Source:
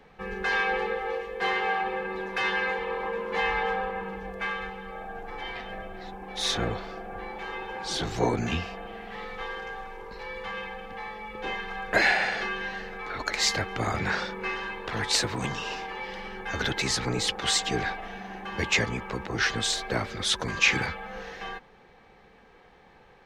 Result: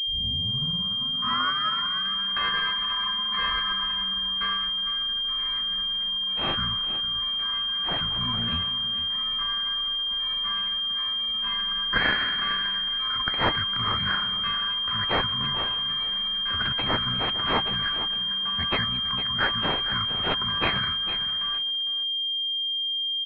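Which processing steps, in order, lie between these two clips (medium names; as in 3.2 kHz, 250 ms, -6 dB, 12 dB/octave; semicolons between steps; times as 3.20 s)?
tape start-up on the opening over 2.09 s; on a send: feedback delay 455 ms, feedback 22%, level -11.5 dB; on the sum: FFT band-reject 260–1000 Hz; resonant low shelf 510 Hz -7 dB, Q 1.5; crossover distortion -51.5 dBFS; class-D stage that switches slowly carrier 3.2 kHz; trim +6 dB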